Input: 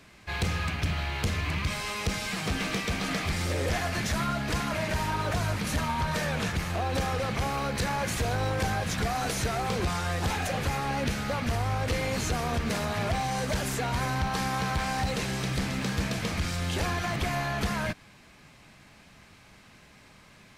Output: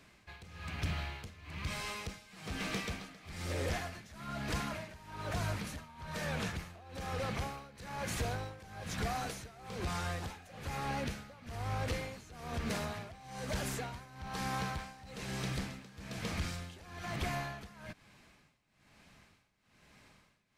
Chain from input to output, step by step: tremolo 1.1 Hz, depth 89%; trim -6.5 dB

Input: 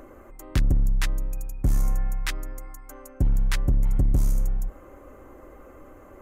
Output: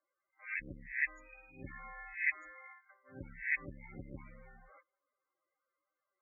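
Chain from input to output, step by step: reverse spectral sustain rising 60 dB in 0.38 s; gate -38 dBFS, range -30 dB; band-pass filter 2.2 kHz, Q 2; level-controlled noise filter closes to 2.2 kHz, open at -37 dBFS; loudest bins only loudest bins 16; trim +5.5 dB

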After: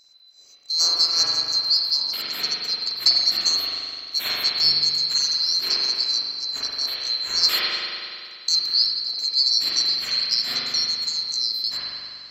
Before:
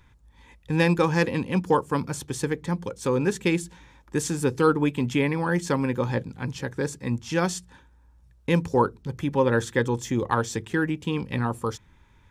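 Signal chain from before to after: split-band scrambler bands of 4 kHz; 2.70–3.13 s: transient shaper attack +10 dB, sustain -2 dB; 7.43–8.49 s: tilt shelf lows -7 dB, about 810 Hz; spring tank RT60 2.3 s, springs 42 ms, chirp 60 ms, DRR -7.5 dB

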